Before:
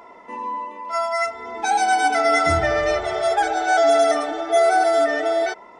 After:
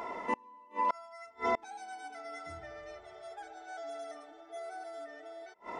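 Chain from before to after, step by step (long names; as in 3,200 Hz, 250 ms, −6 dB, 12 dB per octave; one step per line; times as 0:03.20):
gate with flip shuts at −23 dBFS, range −31 dB
level +4 dB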